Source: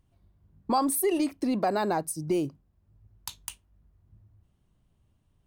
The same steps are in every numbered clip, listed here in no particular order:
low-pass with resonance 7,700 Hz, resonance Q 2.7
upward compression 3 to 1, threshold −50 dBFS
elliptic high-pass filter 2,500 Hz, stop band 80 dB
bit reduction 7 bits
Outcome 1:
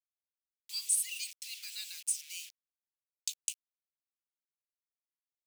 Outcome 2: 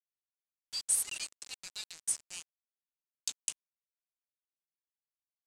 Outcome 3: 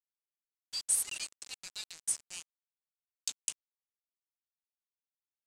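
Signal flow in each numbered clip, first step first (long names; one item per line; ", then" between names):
low-pass with resonance, then bit reduction, then upward compression, then elliptic high-pass filter
elliptic high-pass filter, then bit reduction, then upward compression, then low-pass with resonance
upward compression, then elliptic high-pass filter, then bit reduction, then low-pass with resonance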